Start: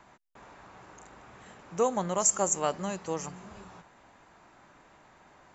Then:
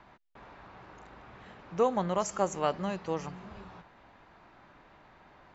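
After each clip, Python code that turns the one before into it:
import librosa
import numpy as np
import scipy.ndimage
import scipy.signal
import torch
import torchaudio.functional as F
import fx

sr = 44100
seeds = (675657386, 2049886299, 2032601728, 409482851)

y = scipy.signal.sosfilt(scipy.signal.butter(4, 4700.0, 'lowpass', fs=sr, output='sos'), x)
y = fx.low_shelf(y, sr, hz=83.0, db=6.0)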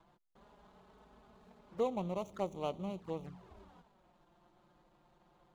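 y = scipy.signal.medfilt(x, 25)
y = fx.env_flanger(y, sr, rest_ms=6.7, full_db=-30.5)
y = y * 10.0 ** (-5.5 / 20.0)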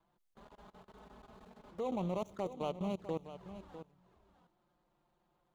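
y = fx.level_steps(x, sr, step_db=21)
y = y + 10.0 ** (-12.5 / 20.0) * np.pad(y, (int(652 * sr / 1000.0), 0))[:len(y)]
y = y * 10.0 ** (6.5 / 20.0)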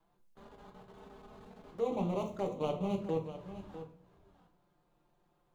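y = fx.room_shoebox(x, sr, seeds[0], volume_m3=42.0, walls='mixed', distance_m=0.49)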